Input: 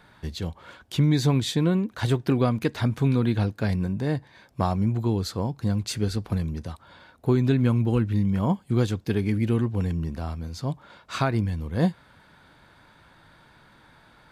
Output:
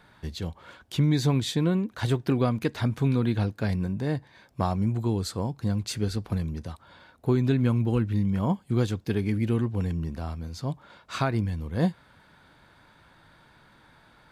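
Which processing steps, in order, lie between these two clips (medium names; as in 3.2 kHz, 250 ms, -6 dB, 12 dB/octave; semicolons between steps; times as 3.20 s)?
4.82–5.53 s: peaking EQ 8.5 kHz +8 dB 0.36 oct; trim -2 dB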